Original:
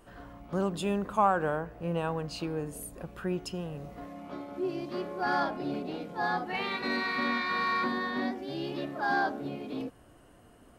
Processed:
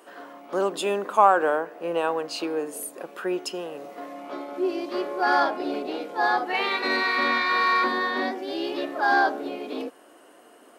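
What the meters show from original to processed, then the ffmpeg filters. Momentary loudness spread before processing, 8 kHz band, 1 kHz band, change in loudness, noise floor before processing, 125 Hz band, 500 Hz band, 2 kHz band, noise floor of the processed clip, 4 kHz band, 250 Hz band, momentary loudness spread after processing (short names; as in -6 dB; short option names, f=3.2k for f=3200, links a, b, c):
13 LU, +8.0 dB, +8.0 dB, +7.5 dB, -57 dBFS, under -10 dB, +7.5 dB, +8.0 dB, -53 dBFS, +8.0 dB, +2.5 dB, 15 LU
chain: -af "highpass=f=310:w=0.5412,highpass=f=310:w=1.3066,volume=8dB"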